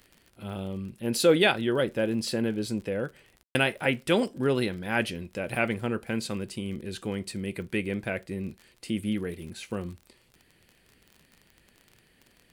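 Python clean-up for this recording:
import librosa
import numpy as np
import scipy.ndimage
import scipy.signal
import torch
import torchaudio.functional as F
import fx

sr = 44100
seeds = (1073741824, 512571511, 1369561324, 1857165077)

y = fx.fix_declick_ar(x, sr, threshold=6.5)
y = fx.fix_ambience(y, sr, seeds[0], print_start_s=10.19, print_end_s=10.69, start_s=3.43, end_s=3.55)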